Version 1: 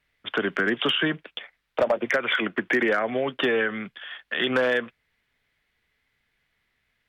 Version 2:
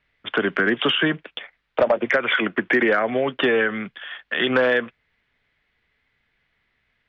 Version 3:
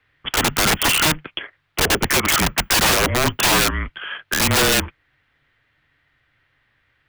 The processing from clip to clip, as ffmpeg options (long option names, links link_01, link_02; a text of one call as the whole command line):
ffmpeg -i in.wav -af "lowpass=3800,volume=4dB" out.wav
ffmpeg -i in.wav -af "aeval=exprs='(mod(6.31*val(0)+1,2)-1)/6.31':channel_layout=same,afreqshift=-150,volume=5dB" out.wav